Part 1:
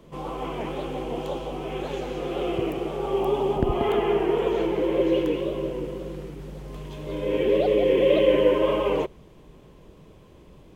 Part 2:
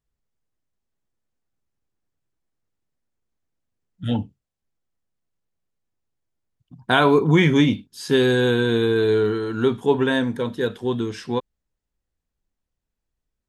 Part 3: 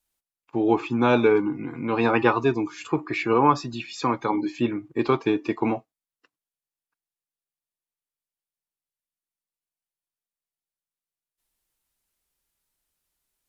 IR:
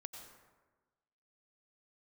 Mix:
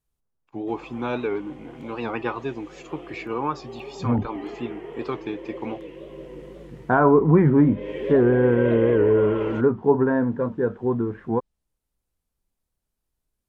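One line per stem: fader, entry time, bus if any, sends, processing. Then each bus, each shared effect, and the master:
−8.0 dB, 0.55 s, no send, parametric band 1,900 Hz +9 dB 0.24 octaves; automatic ducking −7 dB, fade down 1.10 s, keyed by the third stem
+0.5 dB, 0.00 s, no send, low-pass filter 1,400 Hz 24 dB per octave
−8.0 dB, 0.00 s, no send, no processing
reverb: not used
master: treble cut that deepens with the level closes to 2,100 Hz, closed at −14.5 dBFS; wow of a warped record 78 rpm, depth 100 cents

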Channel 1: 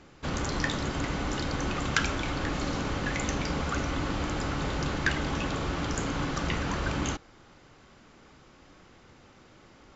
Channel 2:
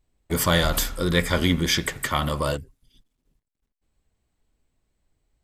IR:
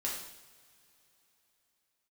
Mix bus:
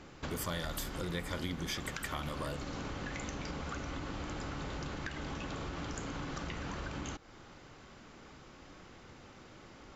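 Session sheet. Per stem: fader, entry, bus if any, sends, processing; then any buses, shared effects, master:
+1.0 dB, 0.00 s, no send, downward compressor, threshold −37 dBFS, peak gain reduction 16 dB
−10.0 dB, 0.00 s, no send, no processing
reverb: not used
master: downward compressor 3 to 1, threshold −36 dBFS, peak gain reduction 9 dB

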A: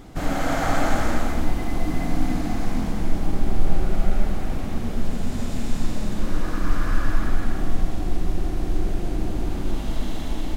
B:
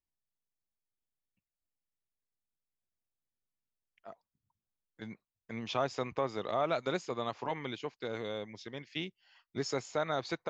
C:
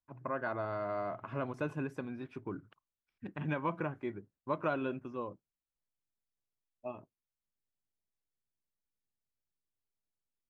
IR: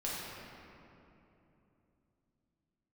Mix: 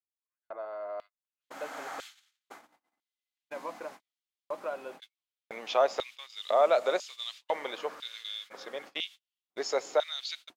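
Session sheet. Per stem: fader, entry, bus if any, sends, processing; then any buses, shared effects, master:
−14.5 dB, 1.25 s, no send, flat-topped bell 510 Hz −11 dB 1.2 octaves
+2.5 dB, 0.00 s, send −23 dB, high-pass filter 160 Hz 6 dB per octave
−7.0 dB, 0.00 s, no send, no processing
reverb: on, RT60 3.1 s, pre-delay 5 ms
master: auto-filter high-pass square 1 Hz 550–3,300 Hz; noise gate −45 dBFS, range −41 dB; low-shelf EQ 210 Hz −4 dB

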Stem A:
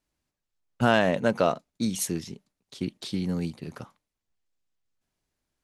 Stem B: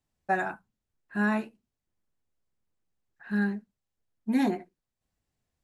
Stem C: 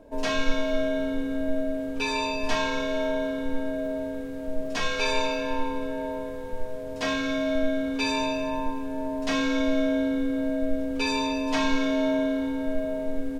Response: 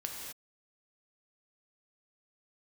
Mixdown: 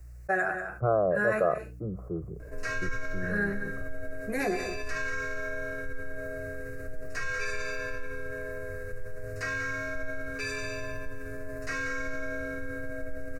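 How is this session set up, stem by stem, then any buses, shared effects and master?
−7.0 dB, 0.00 s, no send, no echo send, Butterworth low-pass 1,300 Hz 96 dB per octave; mains hum 60 Hz, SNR 21 dB; multiband upward and downward expander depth 70%
−1.5 dB, 0.00 s, send −15 dB, echo send −14.5 dB, no processing
−12.0 dB, 2.40 s, no send, echo send −9 dB, graphic EQ with 15 bands 100 Hz +9 dB, 630 Hz −10 dB, 1,600 Hz +5 dB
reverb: on, pre-delay 3 ms
echo: single-tap delay 189 ms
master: phaser with its sweep stopped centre 900 Hz, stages 6; envelope flattener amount 50%

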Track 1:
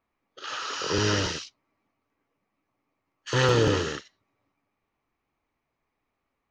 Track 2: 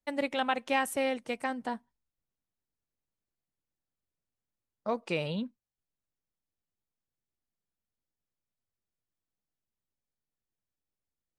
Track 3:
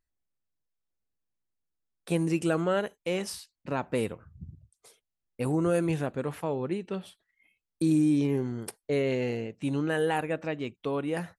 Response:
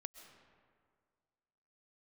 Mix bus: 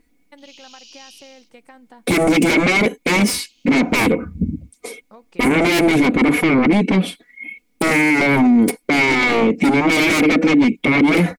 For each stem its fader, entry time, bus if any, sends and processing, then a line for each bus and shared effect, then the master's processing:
−8.0 dB, 0.00 s, no send, Butterworth high-pass 2,400 Hz 96 dB per octave; automatic ducking −18 dB, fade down 1.35 s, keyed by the third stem
−6.5 dB, 0.25 s, no send, notch filter 630 Hz; downward compressor, threshold −34 dBFS, peak gain reduction 10.5 dB
−6.0 dB, 0.00 s, no send, comb filter 4.1 ms, depth 87%; sine wavefolder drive 19 dB, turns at −12 dBFS; hollow resonant body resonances 290/2,200 Hz, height 18 dB, ringing for 20 ms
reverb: not used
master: brickwall limiter −7 dBFS, peak gain reduction 8 dB

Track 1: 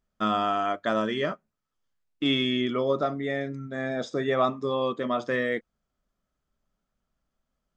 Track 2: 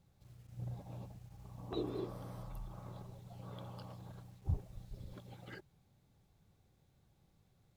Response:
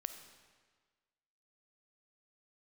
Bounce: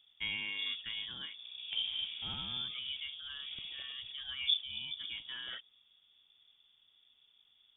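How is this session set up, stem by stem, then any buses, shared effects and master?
−10.0 dB, 0.00 s, no send, automatic ducking −8 dB, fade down 0.95 s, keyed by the second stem
+2.0 dB, 0.00 s, no send, no processing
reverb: not used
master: voice inversion scrambler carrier 3,500 Hz

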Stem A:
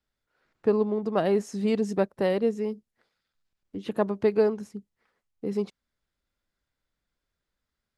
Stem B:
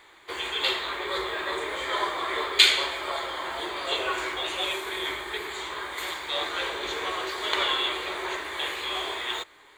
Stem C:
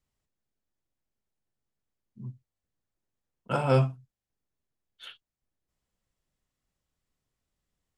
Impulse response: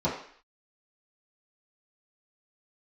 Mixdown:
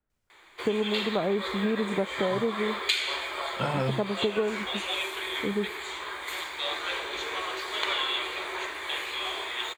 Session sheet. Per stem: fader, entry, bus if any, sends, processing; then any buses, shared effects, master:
+1.0 dB, 0.00 s, no send, low-pass filter 1,500 Hz
−2.0 dB, 0.30 s, no send, low-shelf EQ 400 Hz −4 dB
+2.0 dB, 0.10 s, no send, downward compressor, threshold −25 dBFS, peak gain reduction 8 dB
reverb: not used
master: parametric band 2,400 Hz +4 dB 0.22 octaves; downward compressor 6 to 1, threshold −23 dBFS, peak gain reduction 10 dB

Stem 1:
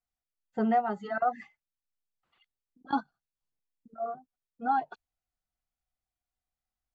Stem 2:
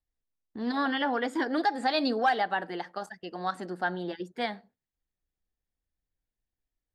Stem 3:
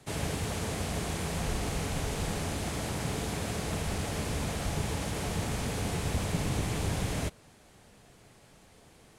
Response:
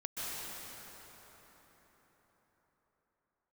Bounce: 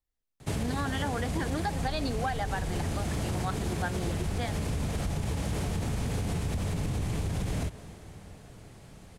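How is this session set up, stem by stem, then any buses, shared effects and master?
muted
0.0 dB, 0.00 s, no bus, no send, no processing
+1.5 dB, 0.40 s, bus A, send −22 dB, low-shelf EQ 420 Hz +3.5 dB
bus A: 0.0 dB, low-shelf EQ 200 Hz +6 dB; brickwall limiter −20 dBFS, peak gain reduction 9.5 dB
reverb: on, RT60 4.8 s, pre-delay 118 ms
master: downward compressor, threshold −27 dBFS, peak gain reduction 8.5 dB

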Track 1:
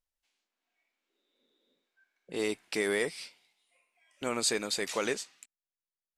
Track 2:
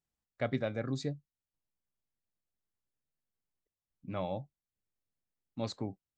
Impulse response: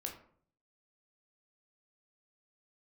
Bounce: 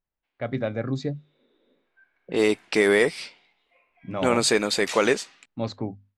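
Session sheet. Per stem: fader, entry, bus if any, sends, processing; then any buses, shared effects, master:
+1.5 dB, 0.00 s, no send, no processing
−2.0 dB, 0.00 s, no send, mains-hum notches 50/100/150/200/250 Hz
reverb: not used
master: low-pass that shuts in the quiet parts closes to 2,500 Hz, open at −29.5 dBFS; high-shelf EQ 4,500 Hz −9.5 dB; automatic gain control gain up to 10 dB

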